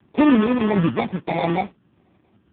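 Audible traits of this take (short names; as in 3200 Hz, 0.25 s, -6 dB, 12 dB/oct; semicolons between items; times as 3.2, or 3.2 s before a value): a quantiser's noise floor 12-bit, dither none; phasing stages 8, 1.5 Hz, lowest notch 780–1900 Hz; aliases and images of a low sample rate 1500 Hz, jitter 0%; AMR-NB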